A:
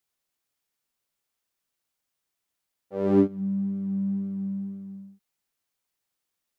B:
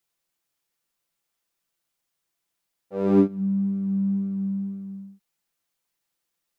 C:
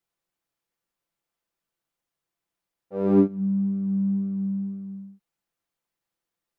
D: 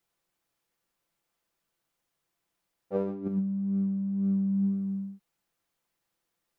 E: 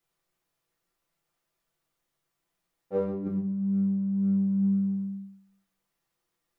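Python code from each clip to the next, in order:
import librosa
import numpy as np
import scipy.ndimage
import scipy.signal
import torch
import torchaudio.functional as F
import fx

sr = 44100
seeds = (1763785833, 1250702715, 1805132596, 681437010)

y1 = x + 0.39 * np.pad(x, (int(5.9 * sr / 1000.0), 0))[:len(x)]
y1 = y1 * 10.0 ** (1.5 / 20.0)
y2 = fx.high_shelf(y1, sr, hz=2200.0, db=-9.0)
y3 = fx.over_compress(y2, sr, threshold_db=-29.0, ratio=-1.0)
y4 = fx.room_shoebox(y3, sr, seeds[0], volume_m3=53.0, walls='mixed', distance_m=0.53)
y4 = y4 * 10.0 ** (-2.0 / 20.0)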